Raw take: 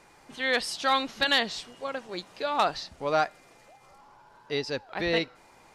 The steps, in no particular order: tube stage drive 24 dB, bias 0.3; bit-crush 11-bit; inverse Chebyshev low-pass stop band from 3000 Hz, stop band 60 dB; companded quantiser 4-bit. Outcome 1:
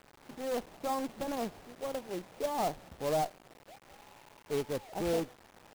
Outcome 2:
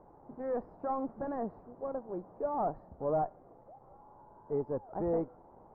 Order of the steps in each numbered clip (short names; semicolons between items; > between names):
bit-crush > tube stage > inverse Chebyshev low-pass > companded quantiser; bit-crush > tube stage > companded quantiser > inverse Chebyshev low-pass